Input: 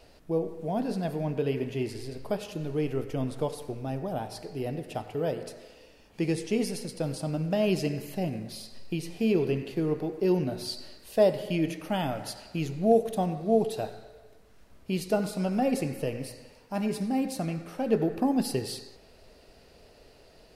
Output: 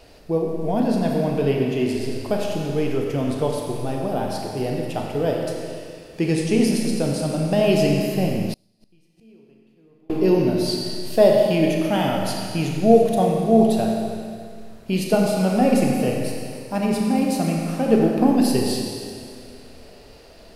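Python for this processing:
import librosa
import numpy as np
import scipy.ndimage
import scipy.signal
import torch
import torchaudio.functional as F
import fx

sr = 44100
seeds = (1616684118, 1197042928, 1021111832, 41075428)

y = fx.rev_schroeder(x, sr, rt60_s=2.2, comb_ms=28, drr_db=0.5)
y = fx.gate_flip(y, sr, shuts_db=-27.0, range_db=-35, at=(8.53, 10.1))
y = y * 10.0 ** (6.5 / 20.0)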